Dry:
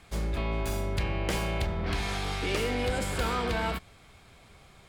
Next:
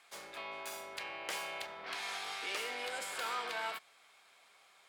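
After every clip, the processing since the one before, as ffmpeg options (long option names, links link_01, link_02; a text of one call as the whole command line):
ffmpeg -i in.wav -af "highpass=780,volume=-5dB" out.wav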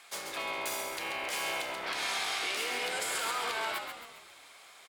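ffmpeg -i in.wav -filter_complex "[0:a]alimiter=level_in=9dB:limit=-24dB:level=0:latency=1:release=110,volume=-9dB,highshelf=frequency=4200:gain=5,asplit=2[link_01][link_02];[link_02]asplit=6[link_03][link_04][link_05][link_06][link_07][link_08];[link_03]adelay=135,afreqshift=-65,volume=-6dB[link_09];[link_04]adelay=270,afreqshift=-130,volume=-12.6dB[link_10];[link_05]adelay=405,afreqshift=-195,volume=-19.1dB[link_11];[link_06]adelay=540,afreqshift=-260,volume=-25.7dB[link_12];[link_07]adelay=675,afreqshift=-325,volume=-32.2dB[link_13];[link_08]adelay=810,afreqshift=-390,volume=-38.8dB[link_14];[link_09][link_10][link_11][link_12][link_13][link_14]amix=inputs=6:normalize=0[link_15];[link_01][link_15]amix=inputs=2:normalize=0,volume=7dB" out.wav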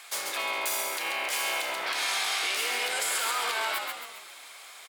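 ffmpeg -i in.wav -filter_complex "[0:a]highpass=frequency=610:poles=1,highshelf=frequency=10000:gain=6,asplit=2[link_01][link_02];[link_02]alimiter=level_in=5.5dB:limit=-24dB:level=0:latency=1,volume=-5.5dB,volume=2dB[link_03];[link_01][link_03]amix=inputs=2:normalize=0" out.wav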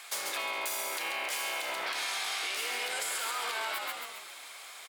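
ffmpeg -i in.wav -af "acompressor=threshold=-31dB:ratio=6" out.wav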